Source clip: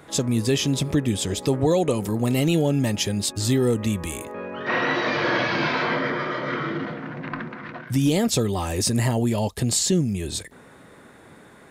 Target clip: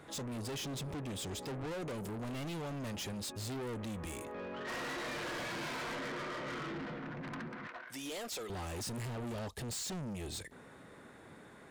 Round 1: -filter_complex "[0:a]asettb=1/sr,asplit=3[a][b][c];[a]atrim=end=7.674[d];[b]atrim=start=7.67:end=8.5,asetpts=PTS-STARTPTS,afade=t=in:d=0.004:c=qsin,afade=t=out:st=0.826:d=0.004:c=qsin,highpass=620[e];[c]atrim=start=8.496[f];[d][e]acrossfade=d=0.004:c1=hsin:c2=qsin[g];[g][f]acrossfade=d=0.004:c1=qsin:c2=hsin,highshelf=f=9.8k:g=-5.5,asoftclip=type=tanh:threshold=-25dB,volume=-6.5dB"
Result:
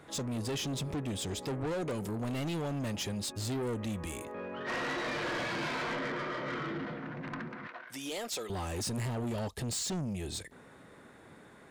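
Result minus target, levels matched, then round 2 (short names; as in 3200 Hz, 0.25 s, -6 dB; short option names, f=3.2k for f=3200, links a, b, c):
soft clip: distortion -4 dB
-filter_complex "[0:a]asettb=1/sr,asplit=3[a][b][c];[a]atrim=end=7.674[d];[b]atrim=start=7.67:end=8.5,asetpts=PTS-STARTPTS,afade=t=in:d=0.004:c=qsin,afade=t=out:st=0.826:d=0.004:c=qsin,highpass=620[e];[c]atrim=start=8.496[f];[d][e]acrossfade=d=0.004:c1=hsin:c2=qsin[g];[g][f]acrossfade=d=0.004:c1=qsin:c2=hsin,highshelf=f=9.8k:g=-5.5,asoftclip=type=tanh:threshold=-32dB,volume=-6.5dB"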